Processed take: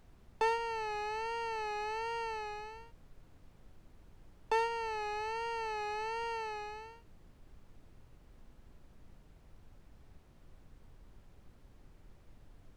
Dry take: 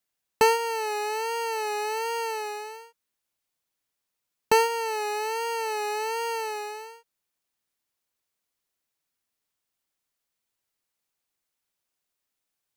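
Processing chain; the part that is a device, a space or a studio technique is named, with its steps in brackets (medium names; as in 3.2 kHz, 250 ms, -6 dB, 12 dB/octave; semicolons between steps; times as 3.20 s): aircraft cabin announcement (band-pass 440–3900 Hz; saturation -14.5 dBFS, distortion -16 dB; brown noise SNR 14 dB); trim -7 dB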